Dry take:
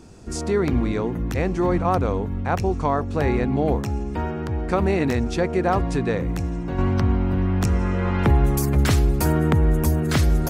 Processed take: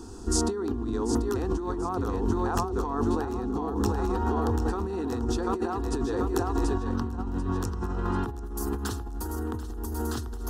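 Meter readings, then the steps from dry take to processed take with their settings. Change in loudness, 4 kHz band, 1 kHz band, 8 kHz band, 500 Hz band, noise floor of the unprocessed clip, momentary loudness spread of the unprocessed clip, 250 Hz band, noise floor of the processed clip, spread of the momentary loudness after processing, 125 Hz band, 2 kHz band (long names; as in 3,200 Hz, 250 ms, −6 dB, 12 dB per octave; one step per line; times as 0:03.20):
−7.5 dB, −6.0 dB, −5.5 dB, −1.5 dB, −6.5 dB, −28 dBFS, 7 LU, −6.0 dB, −36 dBFS, 6 LU, −11.0 dB, −11.5 dB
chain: phaser with its sweep stopped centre 590 Hz, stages 6
echo with a time of its own for lows and highs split 350 Hz, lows 81 ms, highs 739 ms, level −4.5 dB
compressor whose output falls as the input rises −29 dBFS, ratio −1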